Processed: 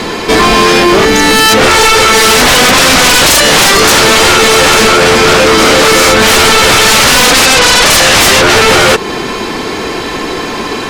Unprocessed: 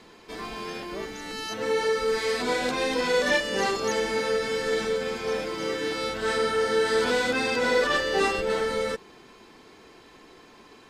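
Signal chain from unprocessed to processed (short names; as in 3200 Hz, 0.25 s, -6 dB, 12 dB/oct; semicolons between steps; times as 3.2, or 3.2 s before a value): 7.45–7.86 elliptic band-pass 540–4400 Hz; in parallel at +1 dB: compressor, threshold -35 dBFS, peak gain reduction 15.5 dB; on the sum: sine folder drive 18 dB, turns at -9 dBFS; gain +6.5 dB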